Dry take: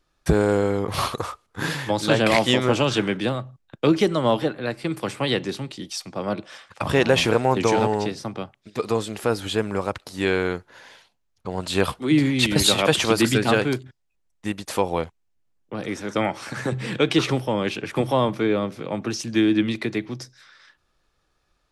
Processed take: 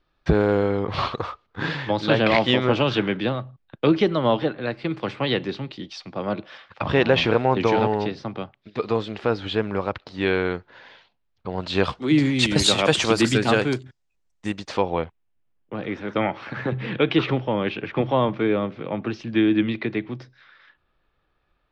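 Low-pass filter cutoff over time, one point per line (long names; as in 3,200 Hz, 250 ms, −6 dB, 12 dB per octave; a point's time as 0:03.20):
low-pass filter 24 dB per octave
0:11.51 4,200 Hz
0:12.36 8,200 Hz
0:14.47 8,200 Hz
0:14.96 3,400 Hz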